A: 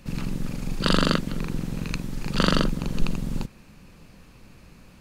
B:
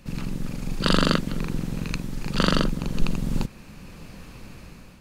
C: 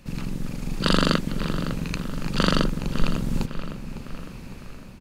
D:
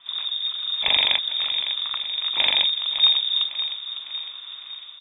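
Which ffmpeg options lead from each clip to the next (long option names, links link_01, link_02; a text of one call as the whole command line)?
ffmpeg -i in.wav -af "dynaudnorm=framelen=290:gausssize=5:maxgain=9dB,volume=-1dB" out.wav
ffmpeg -i in.wav -filter_complex "[0:a]asplit=2[link_01][link_02];[link_02]adelay=555,lowpass=frequency=3700:poles=1,volume=-10.5dB,asplit=2[link_03][link_04];[link_04]adelay=555,lowpass=frequency=3700:poles=1,volume=0.54,asplit=2[link_05][link_06];[link_06]adelay=555,lowpass=frequency=3700:poles=1,volume=0.54,asplit=2[link_07][link_08];[link_08]adelay=555,lowpass=frequency=3700:poles=1,volume=0.54,asplit=2[link_09][link_10];[link_10]adelay=555,lowpass=frequency=3700:poles=1,volume=0.54,asplit=2[link_11][link_12];[link_12]adelay=555,lowpass=frequency=3700:poles=1,volume=0.54[link_13];[link_01][link_03][link_05][link_07][link_09][link_11][link_13]amix=inputs=7:normalize=0" out.wav
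ffmpeg -i in.wav -af "lowpass=frequency=3100:width_type=q:width=0.5098,lowpass=frequency=3100:width_type=q:width=0.6013,lowpass=frequency=3100:width_type=q:width=0.9,lowpass=frequency=3100:width_type=q:width=2.563,afreqshift=-3700" out.wav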